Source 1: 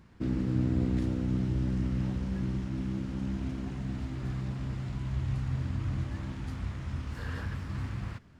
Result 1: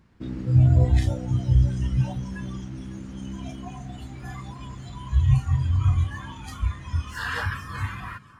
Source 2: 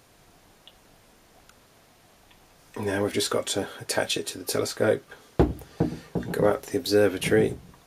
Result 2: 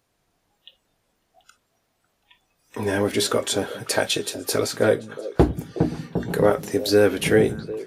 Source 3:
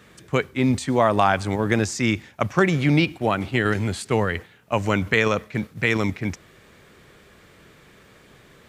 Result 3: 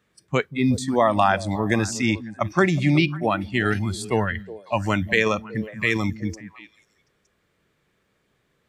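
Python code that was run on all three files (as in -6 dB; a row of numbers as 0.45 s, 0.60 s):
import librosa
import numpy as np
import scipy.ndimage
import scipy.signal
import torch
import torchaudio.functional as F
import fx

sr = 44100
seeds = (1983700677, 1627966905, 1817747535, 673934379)

y = fx.noise_reduce_blind(x, sr, reduce_db=18)
y = fx.echo_stepped(y, sr, ms=183, hz=170.0, octaves=1.4, feedback_pct=70, wet_db=-10)
y = y * 10.0 ** (-24 / 20.0) / np.sqrt(np.mean(np.square(y)))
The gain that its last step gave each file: +15.5 dB, +3.5 dB, 0.0 dB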